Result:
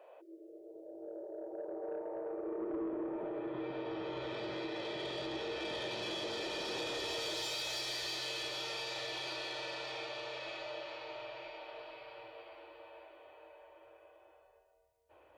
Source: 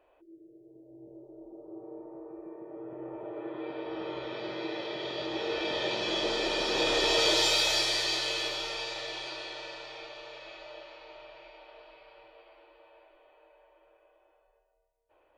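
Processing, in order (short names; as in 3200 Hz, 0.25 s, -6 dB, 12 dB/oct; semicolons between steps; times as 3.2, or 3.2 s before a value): compressor 4:1, threshold -41 dBFS, peak gain reduction 16 dB; high-pass sweep 530 Hz -> 78 Hz, 2.27–4.1; soft clip -36.5 dBFS, distortion -17 dB; gain +4 dB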